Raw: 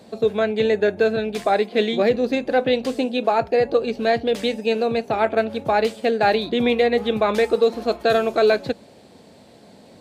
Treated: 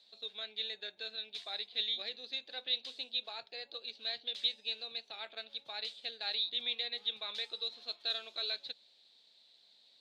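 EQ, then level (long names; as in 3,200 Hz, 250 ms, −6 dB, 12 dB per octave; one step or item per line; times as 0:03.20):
resonant band-pass 3,800 Hz, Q 6.6
0.0 dB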